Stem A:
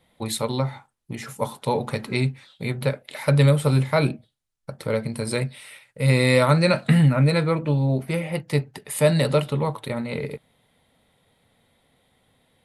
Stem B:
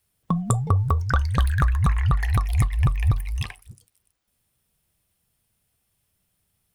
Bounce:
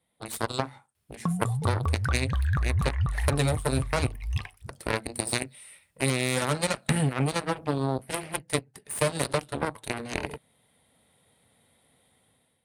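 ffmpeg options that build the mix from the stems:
ffmpeg -i stem1.wav -i stem2.wav -filter_complex "[0:a]aeval=exprs='0.531*(cos(1*acos(clip(val(0)/0.531,-1,1)))-cos(1*PI/2))+0.0596*(cos(6*acos(clip(val(0)/0.531,-1,1)))-cos(6*PI/2))+0.0944*(cos(7*acos(clip(val(0)/0.531,-1,1)))-cos(7*PI/2))':channel_layout=same,equalizer=frequency=9200:width=2.9:gain=13.5,dynaudnorm=framelen=220:gausssize=5:maxgain=11.5dB,volume=-1.5dB[link_01];[1:a]highshelf=frequency=6100:gain=-7,alimiter=limit=-14dB:level=0:latency=1,equalizer=frequency=87:width=1.5:gain=3.5,adelay=950,volume=-2dB[link_02];[link_01][link_02]amix=inputs=2:normalize=0,highpass=53,acompressor=threshold=-22dB:ratio=6" out.wav

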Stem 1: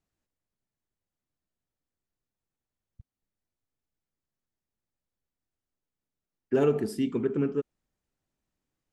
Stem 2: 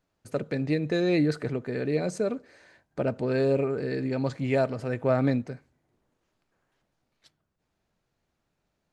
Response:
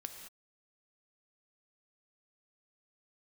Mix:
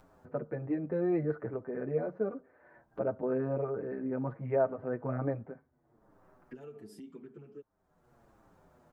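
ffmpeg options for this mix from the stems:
-filter_complex "[0:a]acompressor=threshold=-33dB:ratio=6,volume=-11dB[link_01];[1:a]lowpass=frequency=1400:width=0.5412,lowpass=frequency=1400:width=1.3066,lowshelf=frequency=290:gain=-6.5,volume=-0.5dB[link_02];[link_01][link_02]amix=inputs=2:normalize=0,acompressor=mode=upward:threshold=-41dB:ratio=2.5,asplit=2[link_03][link_04];[link_04]adelay=7.2,afreqshift=-1.3[link_05];[link_03][link_05]amix=inputs=2:normalize=1"

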